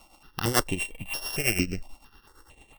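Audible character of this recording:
a buzz of ramps at a fixed pitch in blocks of 16 samples
tremolo triangle 8.9 Hz, depth 80%
notches that jump at a steady rate 4.4 Hz 440–7,700 Hz

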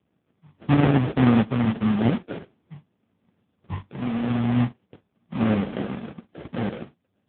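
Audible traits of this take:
a quantiser's noise floor 12 bits, dither none
sample-and-hold tremolo
aliases and images of a low sample rate 1,000 Hz, jitter 20%
AMR narrowband

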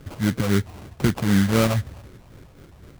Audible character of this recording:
phaser sweep stages 6, 3.9 Hz, lowest notch 320–2,300 Hz
aliases and images of a low sample rate 1,800 Hz, jitter 20%

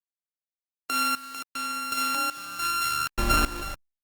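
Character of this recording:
a buzz of ramps at a fixed pitch in blocks of 32 samples
tremolo saw up 0.87 Hz, depth 85%
a quantiser's noise floor 8 bits, dither none
Opus

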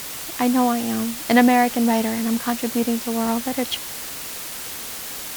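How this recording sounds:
tremolo triangle 2.2 Hz, depth 35%
a quantiser's noise floor 6 bits, dither triangular
WMA

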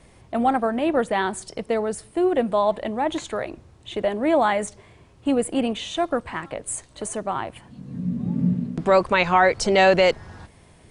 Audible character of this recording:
background noise floor −53 dBFS
spectral slope −5.0 dB per octave

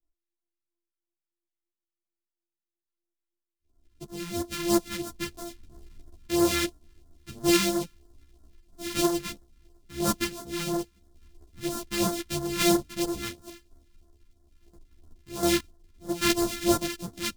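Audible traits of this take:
a buzz of ramps at a fixed pitch in blocks of 128 samples
phaser sweep stages 2, 3 Hz, lowest notch 620–2,400 Hz
sample-and-hold tremolo
a shimmering, thickened sound

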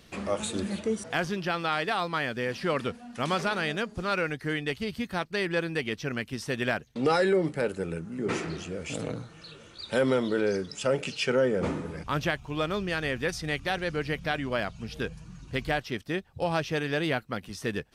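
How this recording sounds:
background noise floor −52 dBFS
spectral slope −4.0 dB per octave

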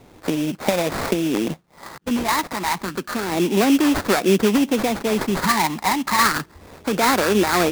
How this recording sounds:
phaser sweep stages 8, 0.3 Hz, lowest notch 430–4,700 Hz
aliases and images of a low sample rate 3,000 Hz, jitter 20%

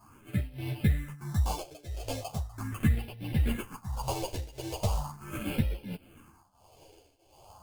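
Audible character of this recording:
aliases and images of a low sample rate 1,900 Hz, jitter 0%
phaser sweep stages 4, 0.39 Hz, lowest notch 190–1,200 Hz
tremolo triangle 1.5 Hz, depth 90%
a shimmering, thickened sound

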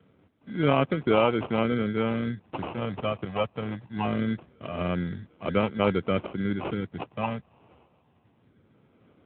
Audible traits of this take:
phaser sweep stages 6, 0.23 Hz, lowest notch 330–2,900 Hz
aliases and images of a low sample rate 1,800 Hz, jitter 0%
AMR narrowband

